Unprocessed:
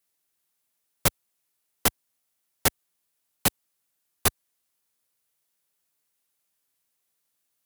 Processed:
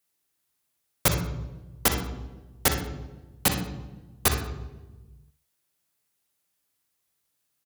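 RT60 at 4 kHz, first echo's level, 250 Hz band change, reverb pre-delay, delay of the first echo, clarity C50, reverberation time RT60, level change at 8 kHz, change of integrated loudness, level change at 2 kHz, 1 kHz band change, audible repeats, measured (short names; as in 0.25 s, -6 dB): 0.75 s, -11.5 dB, +4.0 dB, 29 ms, 62 ms, 6.0 dB, 1.2 s, +0.5 dB, -0.5 dB, +1.5 dB, +1.5 dB, 1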